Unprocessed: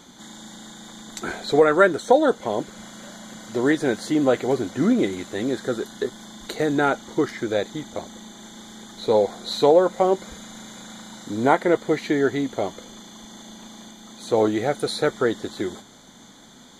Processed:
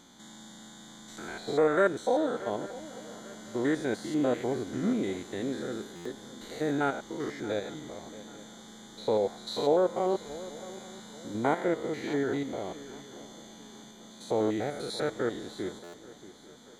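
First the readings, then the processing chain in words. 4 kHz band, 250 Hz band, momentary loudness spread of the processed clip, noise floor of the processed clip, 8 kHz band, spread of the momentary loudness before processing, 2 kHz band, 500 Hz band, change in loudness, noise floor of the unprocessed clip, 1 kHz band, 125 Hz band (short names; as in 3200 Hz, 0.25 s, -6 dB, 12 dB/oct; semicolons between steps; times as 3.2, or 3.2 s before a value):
-8.5 dB, -8.0 dB, 21 LU, -50 dBFS, -8.0 dB, 23 LU, -9.5 dB, -8.5 dB, -8.5 dB, -48 dBFS, -9.5 dB, -7.5 dB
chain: stepped spectrum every 0.1 s; swung echo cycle 0.838 s, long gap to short 3:1, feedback 33%, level -17 dB; stuck buffer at 5.95/15.83, samples 512, times 8; gain -6.5 dB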